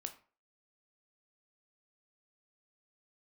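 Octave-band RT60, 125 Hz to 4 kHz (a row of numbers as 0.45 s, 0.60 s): 0.40 s, 0.40 s, 0.40 s, 0.40 s, 0.35 s, 0.25 s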